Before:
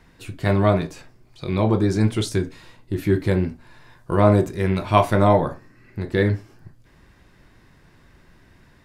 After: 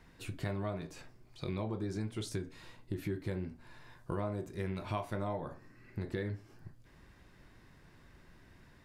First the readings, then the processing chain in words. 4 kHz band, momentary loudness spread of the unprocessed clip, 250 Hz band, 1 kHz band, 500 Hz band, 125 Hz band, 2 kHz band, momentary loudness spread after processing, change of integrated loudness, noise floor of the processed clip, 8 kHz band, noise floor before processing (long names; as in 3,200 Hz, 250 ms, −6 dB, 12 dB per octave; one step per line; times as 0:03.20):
−15.5 dB, 15 LU, −18.0 dB, −20.5 dB, −19.5 dB, −17.5 dB, −17.0 dB, 18 LU, −19.0 dB, −61 dBFS, −13.5 dB, −55 dBFS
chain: downward compressor 6 to 1, threshold −28 dBFS, peak gain reduction 17 dB
level −6.5 dB